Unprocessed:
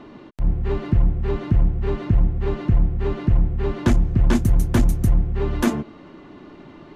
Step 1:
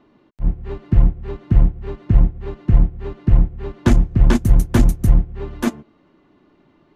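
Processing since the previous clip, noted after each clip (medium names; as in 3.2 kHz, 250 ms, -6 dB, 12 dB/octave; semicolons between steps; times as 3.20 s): upward expansion 2.5:1, over -25 dBFS; trim +6.5 dB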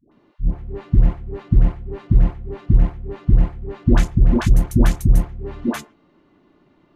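phase dispersion highs, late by 117 ms, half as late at 570 Hz; trim -1 dB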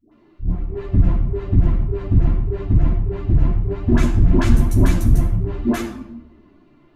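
in parallel at -4 dB: overload inside the chain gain 13 dB; on the sum: simulated room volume 2800 m³, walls furnished, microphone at 3 m; three-phase chorus; trim -2 dB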